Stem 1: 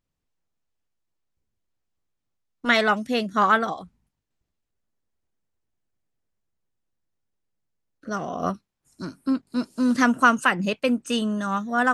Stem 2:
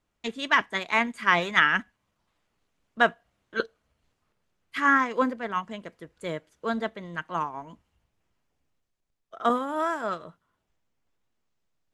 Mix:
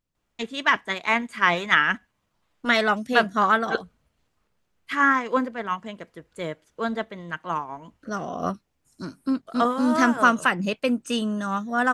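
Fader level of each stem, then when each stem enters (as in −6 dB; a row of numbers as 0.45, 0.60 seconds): −1.0, +1.5 decibels; 0.00, 0.15 seconds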